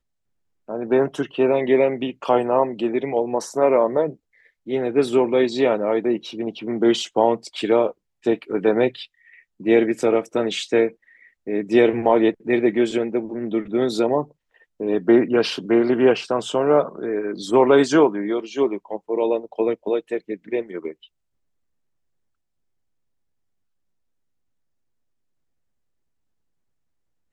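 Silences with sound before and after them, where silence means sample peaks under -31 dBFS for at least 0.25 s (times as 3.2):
4.13–4.68
7.91–8.26
9.05–9.6
10.89–11.47
14.24–14.8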